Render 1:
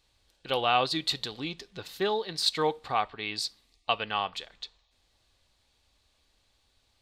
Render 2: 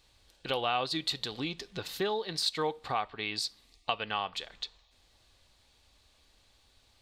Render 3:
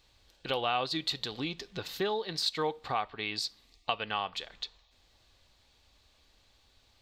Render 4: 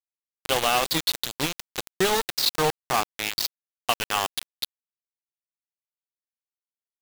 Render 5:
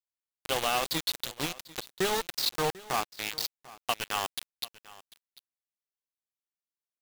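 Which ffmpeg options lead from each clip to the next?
-af "acompressor=threshold=0.0112:ratio=2,volume=1.68"
-af "equalizer=f=9600:t=o:w=0.45:g=-8"
-af "acrusher=bits=4:mix=0:aa=0.000001,volume=2.24"
-af "aecho=1:1:744:0.1,volume=0.501"

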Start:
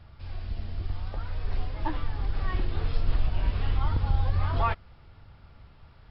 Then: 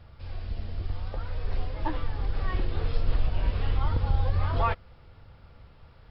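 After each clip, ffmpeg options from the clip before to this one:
-af "equalizer=f=500:w=4.5:g=7"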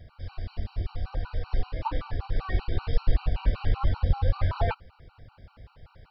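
-af "afftfilt=real='re*gt(sin(2*PI*5.2*pts/sr)*(1-2*mod(floor(b*sr/1024/770),2)),0)':imag='im*gt(sin(2*PI*5.2*pts/sr)*(1-2*mod(floor(b*sr/1024/770),2)),0)':win_size=1024:overlap=0.75,volume=1.5"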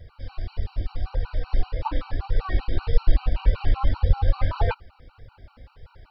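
-af "flanger=delay=2:depth=1.9:regen=26:speed=1.7:shape=sinusoidal,volume=2"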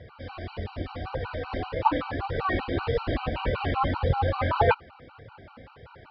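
-af "highpass=150,lowpass=3000,volume=2.37"

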